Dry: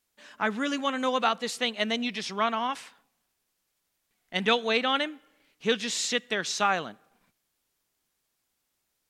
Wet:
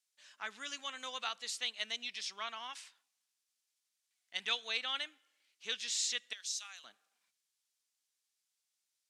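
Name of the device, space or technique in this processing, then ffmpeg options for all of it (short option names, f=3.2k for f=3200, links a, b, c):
piezo pickup straight into a mixer: -filter_complex "[0:a]asettb=1/sr,asplit=3[a][b][c];[a]atrim=end=6.334[d];[b]atrim=start=6.33:end=6.84,asetpts=PTS-STARTPTS,afade=t=in:d=0.004:c=qsin,afade=t=out:st=0.506:d=0.004:c=qsin,aderivative[e];[c]atrim=start=6.836[f];[d][e]acrossfade=d=0.004:c1=hsin:c2=qsin[g];[g][f]acrossfade=d=0.004:c1=qsin:c2=hsin,lowpass=6.8k,aderivative"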